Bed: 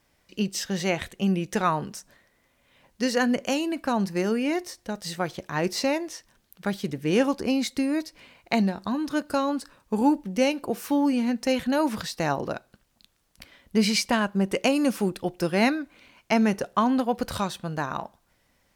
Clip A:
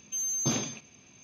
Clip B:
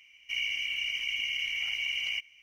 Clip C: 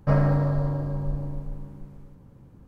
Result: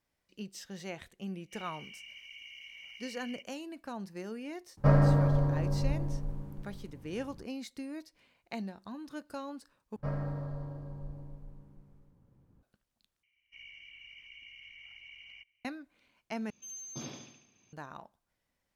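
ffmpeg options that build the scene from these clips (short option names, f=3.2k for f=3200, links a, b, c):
-filter_complex "[2:a]asplit=2[a][b];[3:a]asplit=2[c][d];[0:a]volume=-16dB[e];[b]bass=f=250:g=7,treble=f=4k:g=-14[f];[1:a]aecho=1:1:72|144|216|288|360|432:0.631|0.303|0.145|0.0698|0.0335|0.0161[g];[e]asplit=4[h][i][j][k];[h]atrim=end=9.964[l];[d]atrim=end=2.67,asetpts=PTS-STARTPTS,volume=-14.5dB[m];[i]atrim=start=12.626:end=13.234[n];[f]atrim=end=2.42,asetpts=PTS-STARTPTS,volume=-17.5dB[o];[j]atrim=start=15.646:end=16.504[p];[g]atrim=end=1.23,asetpts=PTS-STARTPTS,volume=-14dB[q];[k]atrim=start=17.726[r];[a]atrim=end=2.42,asetpts=PTS-STARTPTS,volume=-17.5dB,afade=t=in:d=0.004:c=hsin,afade=t=out:st=2.416:d=0.004:c=hsin,adelay=1220[s];[c]atrim=end=2.67,asetpts=PTS-STARTPTS,volume=-2dB,afade=t=in:d=0.004:c=hsin,afade=t=out:st=2.666:d=0.004:c=hsin,adelay=210357S[t];[l][m]acrossfade=d=0.004:c1=hsin:c2=hsin[u];[u][n]acrossfade=d=0.004:c1=hsin:c2=hsin[v];[v][o]acrossfade=d=0.004:c1=hsin:c2=hsin[w];[w][p]acrossfade=d=0.004:c1=hsin:c2=hsin[x];[x][q]acrossfade=d=0.004:c1=hsin:c2=hsin[y];[y][r]acrossfade=d=0.004:c1=hsin:c2=hsin[z];[z][s][t]amix=inputs=3:normalize=0"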